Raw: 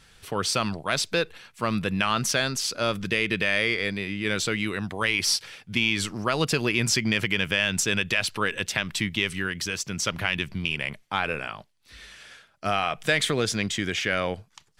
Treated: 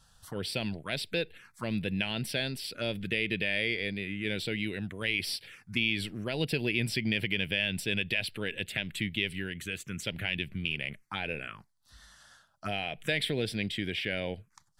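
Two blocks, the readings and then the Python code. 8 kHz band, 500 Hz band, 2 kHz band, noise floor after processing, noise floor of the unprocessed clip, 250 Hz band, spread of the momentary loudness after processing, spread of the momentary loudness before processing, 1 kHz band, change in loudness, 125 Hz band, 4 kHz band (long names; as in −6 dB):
−15.5 dB, −7.0 dB, −6.5 dB, −68 dBFS, −62 dBFS, −5.0 dB, 8 LU, 7 LU, −14.5 dB, −6.5 dB, −4.5 dB, −6.0 dB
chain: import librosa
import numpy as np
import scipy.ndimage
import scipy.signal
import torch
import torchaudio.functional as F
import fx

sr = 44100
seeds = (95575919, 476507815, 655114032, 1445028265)

y = fx.env_phaser(x, sr, low_hz=360.0, high_hz=1200.0, full_db=-24.5)
y = y * 10.0 ** (-4.5 / 20.0)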